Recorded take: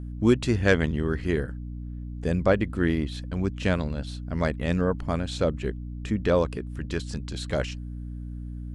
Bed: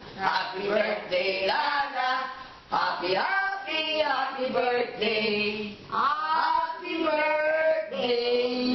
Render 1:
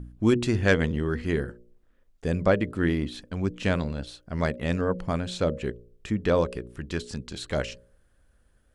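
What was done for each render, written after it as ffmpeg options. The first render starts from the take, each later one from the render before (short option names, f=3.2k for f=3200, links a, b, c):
-af "bandreject=f=60:t=h:w=4,bandreject=f=120:t=h:w=4,bandreject=f=180:t=h:w=4,bandreject=f=240:t=h:w=4,bandreject=f=300:t=h:w=4,bandreject=f=360:t=h:w=4,bandreject=f=420:t=h:w=4,bandreject=f=480:t=h:w=4,bandreject=f=540:t=h:w=4,bandreject=f=600:t=h:w=4"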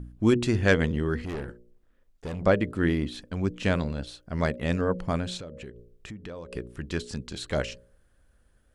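-filter_complex "[0:a]asettb=1/sr,asplit=3[a][b][c];[a]atrim=end=1.254[d];[b]atrim=start=1.25:end=2.44,asetpts=PTS-STARTPTS,afade=t=in:d=0.004:c=qsin,afade=t=out:st=1.186:d=0.004:c=qsin,aeval=exprs='(tanh(31.6*val(0)+0.35)-tanh(0.35))/31.6':c=same[e];[c]atrim=start=2.436[f];[d][e]acrossfade=d=0.004:c1=hsin:c2=qsin[g];[g][f]acrossfade=d=0.004:c1=qsin:c2=hsin,asettb=1/sr,asplit=3[h][i][j];[h]atrim=end=5.374[k];[i]atrim=start=5.37:end=6.53,asetpts=PTS-STARTPTS,afade=t=in:d=0.004:c=qsin,afade=t=out:st=1.156:d=0.004:c=qsin,acompressor=threshold=-38dB:ratio=5:attack=3.2:release=140:knee=1:detection=peak[l];[j]atrim=start=6.526[m];[k][l]acrossfade=d=0.004:c1=hsin:c2=qsin[n];[n][m]acrossfade=d=0.004:c1=qsin:c2=hsin"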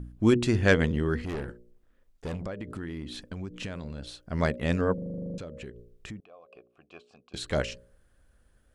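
-filter_complex "[0:a]asettb=1/sr,asplit=3[a][b][c];[a]atrim=end=2.364[d];[b]atrim=start=2.36:end=4.21,asetpts=PTS-STARTPTS,afade=t=in:d=0.004:c=qsin,afade=t=out:st=1.846:d=0.004:c=qsin,acompressor=threshold=-32dB:ratio=8:attack=3.2:release=140:knee=1:detection=peak[e];[c]atrim=start=4.206[f];[d][e]acrossfade=d=0.004:c1=hsin:c2=qsin[g];[g][f]acrossfade=d=0.004:c1=qsin:c2=hsin,asettb=1/sr,asplit=3[h][i][j];[h]atrim=end=6.204[k];[i]atrim=start=6.2:end=7.34,asetpts=PTS-STARTPTS,afade=t=in:d=0.004:c=qsin,afade=t=out:st=1.136:d=0.004:c=qsin,asplit=3[l][m][n];[l]bandpass=f=730:t=q:w=8,volume=0dB[o];[m]bandpass=f=1.09k:t=q:w=8,volume=-6dB[p];[n]bandpass=f=2.44k:t=q:w=8,volume=-9dB[q];[o][p][q]amix=inputs=3:normalize=0[r];[j]atrim=start=7.336[s];[k][r]acrossfade=d=0.004:c1=hsin:c2=qsin[t];[t][s]acrossfade=d=0.004:c1=qsin:c2=hsin,asplit=12[u][v][w][x][y][z][aa][ab][ac][ad][ae][af];[u]atrim=end=4.982[ag];[v]atrim=start=4.938:end=4.982[ah];[w]atrim=start=4.938:end=4.982[ai];[x]atrim=start=4.938:end=4.982[aj];[y]atrim=start=4.938:end=4.982[ak];[z]atrim=start=4.938:end=4.982[al];[aa]atrim=start=4.938:end=4.982[am];[ab]atrim=start=4.938:end=4.982[an];[ac]atrim=start=4.938:end=4.982[ao];[ad]atrim=start=4.938:end=4.982[ap];[ae]atrim=start=4.938:end=4.982[aq];[af]atrim=start=5.378[ar];[ag][ah]acrossfade=d=0.004:c1=hsin:c2=hsin[as];[as][ai]acrossfade=d=0.004:c1=hsin:c2=hsin[at];[at][aj]acrossfade=d=0.004:c1=hsin:c2=hsin[au];[au][ak]acrossfade=d=0.004:c1=hsin:c2=hsin[av];[av][al]acrossfade=d=0.004:c1=hsin:c2=hsin[aw];[aw][am]acrossfade=d=0.004:c1=hsin:c2=hsin[ax];[ax][an]acrossfade=d=0.004:c1=hsin:c2=hsin[ay];[ay][ao]acrossfade=d=0.004:c1=hsin:c2=hsin[az];[az][ap]acrossfade=d=0.004:c1=hsin:c2=hsin[ba];[ba][aq]acrossfade=d=0.004:c1=hsin:c2=hsin[bb];[bb][ar]acrossfade=d=0.004:c1=hsin:c2=hsin"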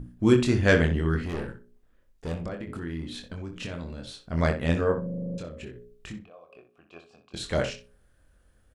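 -filter_complex "[0:a]asplit=2[a][b];[b]adelay=24,volume=-5dB[c];[a][c]amix=inputs=2:normalize=0,asplit=2[d][e];[e]adelay=62,lowpass=f=3.7k:p=1,volume=-9.5dB,asplit=2[f][g];[g]adelay=62,lowpass=f=3.7k:p=1,volume=0.18,asplit=2[h][i];[i]adelay=62,lowpass=f=3.7k:p=1,volume=0.18[j];[d][f][h][j]amix=inputs=4:normalize=0"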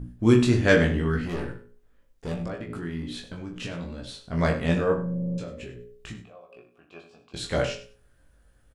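-filter_complex "[0:a]asplit=2[a][b];[b]adelay=17,volume=-4dB[c];[a][c]amix=inputs=2:normalize=0,aecho=1:1:98|196:0.178|0.032"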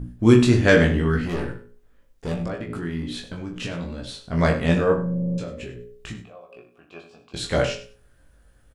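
-af "volume=4dB,alimiter=limit=-2dB:level=0:latency=1"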